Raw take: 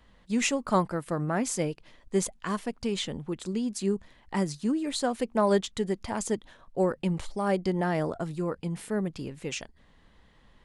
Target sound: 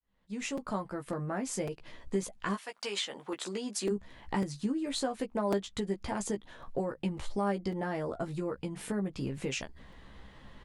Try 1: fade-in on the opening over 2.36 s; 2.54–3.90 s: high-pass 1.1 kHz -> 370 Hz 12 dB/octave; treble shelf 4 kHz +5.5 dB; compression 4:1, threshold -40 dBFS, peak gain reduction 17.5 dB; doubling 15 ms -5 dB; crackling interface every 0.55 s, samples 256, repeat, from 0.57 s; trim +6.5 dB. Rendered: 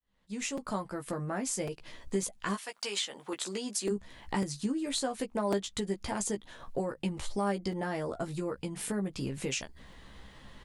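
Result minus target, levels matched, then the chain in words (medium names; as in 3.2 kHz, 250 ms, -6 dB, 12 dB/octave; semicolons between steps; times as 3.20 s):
8 kHz band +4.5 dB
fade-in on the opening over 2.36 s; 2.54–3.90 s: high-pass 1.1 kHz -> 370 Hz 12 dB/octave; treble shelf 4 kHz -4 dB; compression 4:1, threshold -40 dBFS, peak gain reduction 17.5 dB; doubling 15 ms -5 dB; crackling interface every 0.55 s, samples 256, repeat, from 0.57 s; trim +6.5 dB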